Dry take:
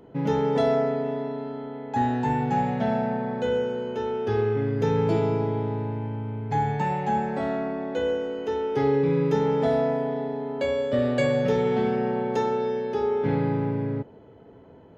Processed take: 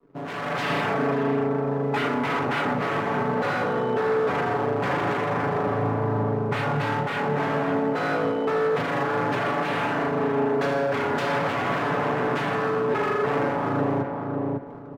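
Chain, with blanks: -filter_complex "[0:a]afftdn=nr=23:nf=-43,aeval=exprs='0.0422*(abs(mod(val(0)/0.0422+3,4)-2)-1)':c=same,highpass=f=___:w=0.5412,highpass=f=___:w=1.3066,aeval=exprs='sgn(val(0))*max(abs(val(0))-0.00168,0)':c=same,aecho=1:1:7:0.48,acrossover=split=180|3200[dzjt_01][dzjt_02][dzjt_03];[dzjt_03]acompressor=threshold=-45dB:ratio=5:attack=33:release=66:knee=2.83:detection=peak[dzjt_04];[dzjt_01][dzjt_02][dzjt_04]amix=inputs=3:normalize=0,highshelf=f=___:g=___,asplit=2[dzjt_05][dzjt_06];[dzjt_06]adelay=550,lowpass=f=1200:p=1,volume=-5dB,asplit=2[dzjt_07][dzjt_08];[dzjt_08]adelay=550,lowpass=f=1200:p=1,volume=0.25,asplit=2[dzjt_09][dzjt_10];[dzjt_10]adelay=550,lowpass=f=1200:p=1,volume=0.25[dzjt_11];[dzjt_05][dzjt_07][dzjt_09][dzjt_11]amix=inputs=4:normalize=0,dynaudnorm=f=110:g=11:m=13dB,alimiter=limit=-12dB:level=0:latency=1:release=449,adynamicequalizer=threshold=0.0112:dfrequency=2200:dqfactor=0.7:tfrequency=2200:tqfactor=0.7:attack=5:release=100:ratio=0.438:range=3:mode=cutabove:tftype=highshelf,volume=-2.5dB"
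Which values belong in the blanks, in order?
110, 110, 4000, -5.5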